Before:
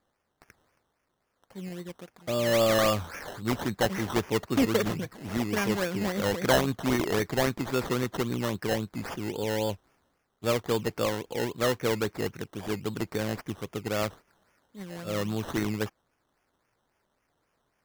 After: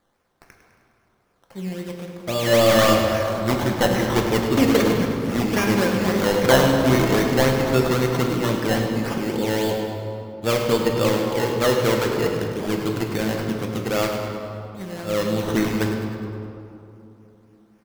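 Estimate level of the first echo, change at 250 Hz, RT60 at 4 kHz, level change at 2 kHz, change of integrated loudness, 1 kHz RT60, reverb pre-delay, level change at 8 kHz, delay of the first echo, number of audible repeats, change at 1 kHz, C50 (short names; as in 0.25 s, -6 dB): -10.5 dB, +9.0 dB, 1.5 s, +8.0 dB, +8.5 dB, 2.7 s, 6 ms, +7.0 dB, 0.103 s, 1, +8.5 dB, 2.5 dB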